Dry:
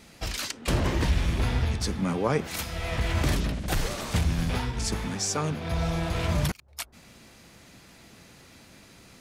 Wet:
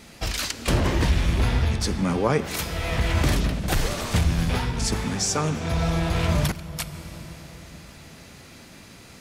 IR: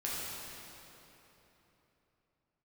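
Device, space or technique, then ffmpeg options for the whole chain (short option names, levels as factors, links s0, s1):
ducked reverb: -filter_complex "[0:a]asplit=3[s0][s1][s2];[1:a]atrim=start_sample=2205[s3];[s1][s3]afir=irnorm=-1:irlink=0[s4];[s2]apad=whole_len=405867[s5];[s4][s5]sidechaincompress=threshold=0.0398:ratio=8:attack=6.3:release=1220,volume=0.355[s6];[s0][s6]amix=inputs=2:normalize=0,volume=1.41"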